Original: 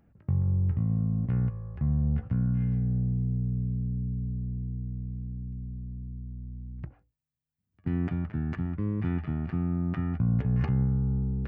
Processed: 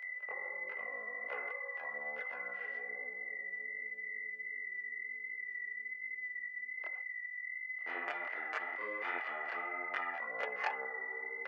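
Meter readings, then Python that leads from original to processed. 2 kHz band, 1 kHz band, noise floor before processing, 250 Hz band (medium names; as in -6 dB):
+16.5 dB, +6.5 dB, -82 dBFS, -30.0 dB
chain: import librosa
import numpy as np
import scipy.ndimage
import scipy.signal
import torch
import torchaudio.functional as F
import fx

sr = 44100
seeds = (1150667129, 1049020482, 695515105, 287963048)

y = x + 10.0 ** (-46.0 / 20.0) * np.sin(2.0 * np.pi * 2000.0 * np.arange(len(x)) / sr)
y = fx.chorus_voices(y, sr, voices=2, hz=1.2, base_ms=25, depth_ms=3.4, mix_pct=60)
y = scipy.signal.sosfilt(scipy.signal.ellip(4, 1.0, 80, 510.0, 'highpass', fs=sr, output='sos'), y)
y = F.gain(torch.from_numpy(y), 9.5).numpy()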